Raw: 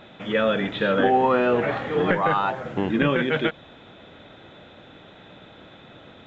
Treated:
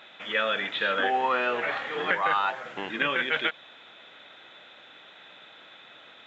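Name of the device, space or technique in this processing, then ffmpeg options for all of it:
filter by subtraction: -filter_complex "[0:a]asplit=2[s0][s1];[s1]lowpass=2100,volume=-1[s2];[s0][s2]amix=inputs=2:normalize=0"

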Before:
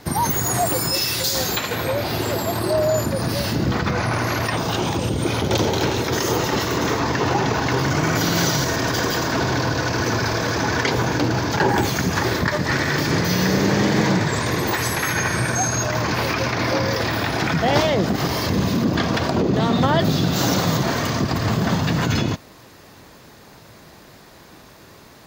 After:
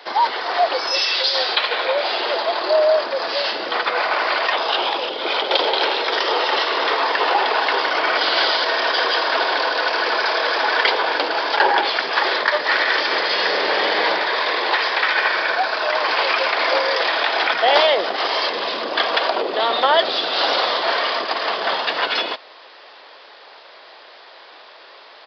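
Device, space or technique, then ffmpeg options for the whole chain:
musical greeting card: -af "aresample=11025,aresample=44100,highpass=f=500:w=0.5412,highpass=f=500:w=1.3066,equalizer=f=3200:t=o:w=0.34:g=5,volume=1.78"

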